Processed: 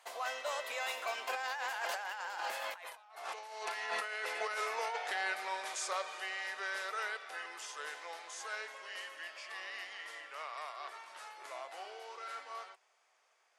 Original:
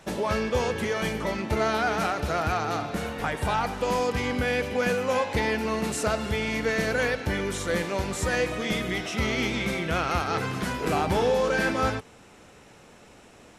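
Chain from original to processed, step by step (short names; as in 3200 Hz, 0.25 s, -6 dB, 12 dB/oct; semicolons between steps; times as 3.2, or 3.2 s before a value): Doppler pass-by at 3.01, 52 m/s, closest 7.9 m; HPF 650 Hz 24 dB/oct; negative-ratio compressor -52 dBFS, ratio -1; gain +10 dB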